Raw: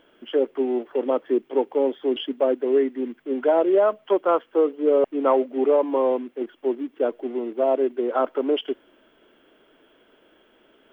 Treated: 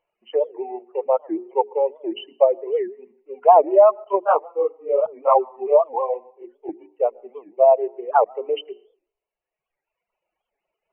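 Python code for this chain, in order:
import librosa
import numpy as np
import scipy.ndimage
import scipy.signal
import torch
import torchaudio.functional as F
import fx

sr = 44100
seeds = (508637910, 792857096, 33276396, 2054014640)

y = fx.bin_expand(x, sr, power=1.5)
y = fx.brickwall_lowpass(y, sr, high_hz=3100.0)
y = fx.peak_eq(y, sr, hz=1000.0, db=14.5, octaves=2.2)
y = fx.rev_plate(y, sr, seeds[0], rt60_s=0.58, hf_ratio=0.9, predelay_ms=95, drr_db=14.0)
y = fx.dereverb_blind(y, sr, rt60_s=1.6)
y = fx.low_shelf(y, sr, hz=160.0, db=-6.5)
y = fx.hum_notches(y, sr, base_hz=60, count=7)
y = fx.chorus_voices(y, sr, voices=2, hz=1.5, base_ms=23, depth_ms=3.0, mix_pct=65, at=(4.04, 6.7))
y = fx.fixed_phaser(y, sr, hz=650.0, stages=4)
y = fx.record_warp(y, sr, rpm=78.0, depth_cents=250.0)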